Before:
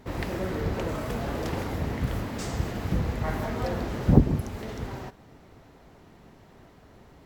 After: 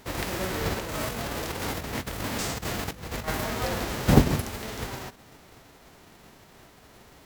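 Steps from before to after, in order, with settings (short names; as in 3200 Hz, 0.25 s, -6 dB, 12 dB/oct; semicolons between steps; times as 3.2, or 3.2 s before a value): spectral whitening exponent 0.6; de-hum 82.55 Hz, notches 3; 0.79–3.28 negative-ratio compressor -32 dBFS, ratio -0.5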